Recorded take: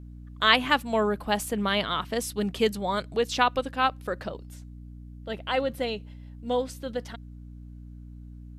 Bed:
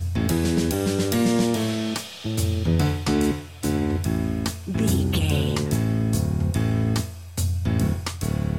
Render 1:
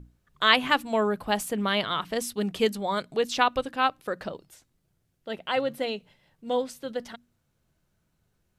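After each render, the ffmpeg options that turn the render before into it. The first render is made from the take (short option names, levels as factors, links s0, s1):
-af "bandreject=f=60:t=h:w=6,bandreject=f=120:t=h:w=6,bandreject=f=180:t=h:w=6,bandreject=f=240:t=h:w=6,bandreject=f=300:t=h:w=6"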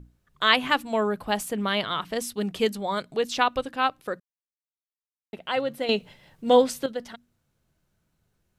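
-filter_complex "[0:a]asplit=5[s0][s1][s2][s3][s4];[s0]atrim=end=4.2,asetpts=PTS-STARTPTS,afade=t=out:st=4.196:d=0.004:c=hsin[s5];[s1]atrim=start=4.2:end=5.33,asetpts=PTS-STARTPTS,volume=0[s6];[s2]atrim=start=5.33:end=5.892,asetpts=PTS-STARTPTS,afade=t=in:d=0.004:c=hsin[s7];[s3]atrim=start=5.888:end=6.862,asetpts=PTS-STARTPTS,volume=2.99[s8];[s4]atrim=start=6.858[s9];[s5][s6][s7]concat=n=3:v=0:a=1[s10];[s10][s8]acrossfade=d=0.004:c1=hsin:c2=hsin[s11];[s11][s9]acrossfade=d=0.004:c1=hsin:c2=hsin"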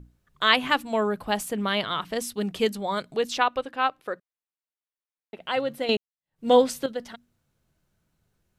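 -filter_complex "[0:a]asettb=1/sr,asplit=3[s0][s1][s2];[s0]atrim=end=3.384[s3];[s1]atrim=start=3.38:end=5.4,asetpts=PTS-STARTPTS,afade=t=in:d=0.004:c=qsin,afade=t=out:st=2.016:d=0.004:c=qsin,bass=f=250:g=-9,treble=f=4000:g=-8[s4];[s2]atrim=start=5.396[s5];[s3][s4]acrossfade=d=0.004:c1=hsin:c2=qsin[s6];[s6][s5]acrossfade=d=0.004:c1=qsin:c2=hsin,asplit=2[s7][s8];[s7]atrim=end=5.97,asetpts=PTS-STARTPTS,afade=t=out:st=5.966:d=0.004:c=hsin[s9];[s8]atrim=start=5.97,asetpts=PTS-STARTPTS,afade=t=in:d=0.48:c=exp[s10];[s9][s10]concat=n=2:v=0:a=1"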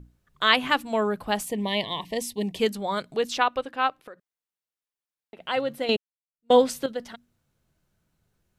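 -filter_complex "[0:a]asettb=1/sr,asplit=3[s0][s1][s2];[s0]atrim=end=1.454[s3];[s1]atrim=start=1.45:end=2.59,asetpts=PTS-STARTPTS,afade=t=in:d=0.004:c=qsin,afade=t=out:st=1.136:d=0.004:c=qsin,asuperstop=centerf=1400:order=12:qfactor=2.1[s4];[s2]atrim=start=2.586[s5];[s3][s4]acrossfade=d=0.004:c1=hsin:c2=qsin[s6];[s6][s5]acrossfade=d=0.004:c1=qsin:c2=hsin,asettb=1/sr,asplit=3[s7][s8][s9];[s7]atrim=end=3.984[s10];[s8]atrim=start=3.98:end=5.37,asetpts=PTS-STARTPTS,afade=t=in:d=0.004:c=qsin,afade=t=out:st=1.386:d=0.004:c=qsin,acompressor=threshold=0.0112:ratio=10:attack=3.2:release=140:knee=1:detection=peak[s11];[s9]atrim=start=5.366[s12];[s10][s11]acrossfade=d=0.004:c1=hsin:c2=qsin[s13];[s13][s12]acrossfade=d=0.004:c1=qsin:c2=hsin,asettb=1/sr,asplit=3[s14][s15][s16];[s14]atrim=end=5.964[s17];[s15]atrim=start=5.96:end=6.63,asetpts=PTS-STARTPTS,afade=t=in:d=0.004:c=qsin,afade=t=out:st=0.666:d=0.004:c=qsin,agate=range=0.0178:threshold=0.0708:ratio=16:release=100:detection=peak[s18];[s16]atrim=start=6.626[s19];[s17][s18]acrossfade=d=0.004:c1=hsin:c2=qsin[s20];[s20][s19]acrossfade=d=0.004:c1=qsin:c2=hsin"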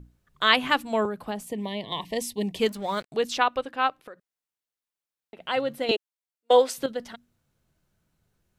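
-filter_complex "[0:a]asettb=1/sr,asplit=3[s0][s1][s2];[s0]atrim=end=1.054[s3];[s1]atrim=start=1.05:end=1.92,asetpts=PTS-STARTPTS,afade=t=in:d=0.004:c=qsin,afade=t=out:st=0.866:d=0.004:c=qsin,acrossover=split=120|560[s4][s5][s6];[s4]acompressor=threshold=0.00126:ratio=4[s7];[s5]acompressor=threshold=0.0316:ratio=4[s8];[s6]acompressor=threshold=0.0141:ratio=4[s9];[s7][s8][s9]amix=inputs=3:normalize=0[s10];[s2]atrim=start=1.916[s11];[s3][s10]acrossfade=d=0.004:c1=hsin:c2=qsin[s12];[s12][s11]acrossfade=d=0.004:c1=qsin:c2=hsin,asettb=1/sr,asplit=3[s13][s14][s15];[s13]atrim=end=2.624[s16];[s14]atrim=start=2.62:end=3.12,asetpts=PTS-STARTPTS,afade=t=in:d=0.004:c=qsin,afade=t=out:st=0.496:d=0.004:c=qsin,aeval=exprs='sgn(val(0))*max(abs(val(0))-0.00531,0)':c=same[s17];[s15]atrim=start=3.116[s18];[s16][s17]acrossfade=d=0.004:c1=hsin:c2=qsin[s19];[s19][s18]acrossfade=d=0.004:c1=qsin:c2=hsin,asettb=1/sr,asplit=3[s20][s21][s22];[s20]atrim=end=5.914[s23];[s21]atrim=start=5.91:end=6.78,asetpts=PTS-STARTPTS,afade=t=in:d=0.004:c=qsin,afade=t=out:st=0.866:d=0.004:c=qsin,highpass=f=350:w=0.5412,highpass=f=350:w=1.3066[s24];[s22]atrim=start=6.776[s25];[s23][s24]acrossfade=d=0.004:c1=hsin:c2=qsin[s26];[s26][s25]acrossfade=d=0.004:c1=qsin:c2=hsin"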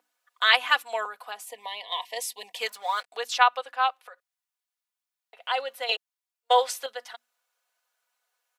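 -af "highpass=f=680:w=0.5412,highpass=f=680:w=1.3066,aecho=1:1:4.1:0.64"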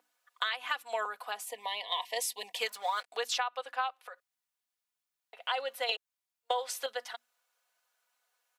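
-af "alimiter=limit=0.211:level=0:latency=1:release=341,acompressor=threshold=0.0398:ratio=12"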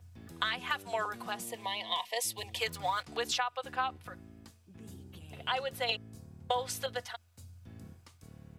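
-filter_complex "[1:a]volume=0.0398[s0];[0:a][s0]amix=inputs=2:normalize=0"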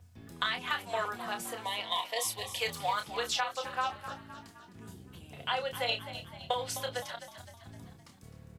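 -filter_complex "[0:a]asplit=2[s0][s1];[s1]adelay=29,volume=0.447[s2];[s0][s2]amix=inputs=2:normalize=0,asplit=6[s3][s4][s5][s6][s7][s8];[s4]adelay=258,afreqshift=46,volume=0.251[s9];[s5]adelay=516,afreqshift=92,volume=0.129[s10];[s6]adelay=774,afreqshift=138,volume=0.0653[s11];[s7]adelay=1032,afreqshift=184,volume=0.0335[s12];[s8]adelay=1290,afreqshift=230,volume=0.017[s13];[s3][s9][s10][s11][s12][s13]amix=inputs=6:normalize=0"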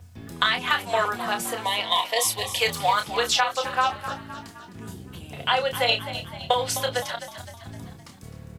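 -af "volume=3.16"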